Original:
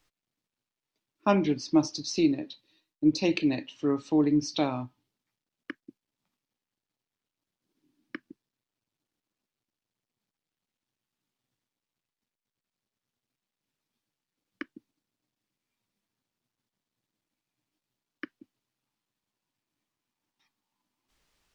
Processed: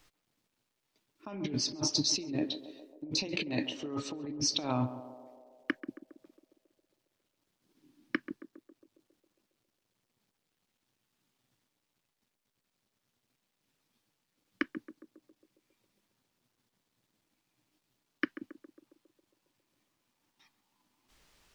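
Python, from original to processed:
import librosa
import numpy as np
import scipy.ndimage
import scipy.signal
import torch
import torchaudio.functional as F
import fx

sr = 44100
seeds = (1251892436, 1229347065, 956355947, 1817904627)

y = fx.over_compress(x, sr, threshold_db=-35.0, ratio=-1.0)
y = fx.echo_banded(y, sr, ms=136, feedback_pct=73, hz=530.0, wet_db=-10.0)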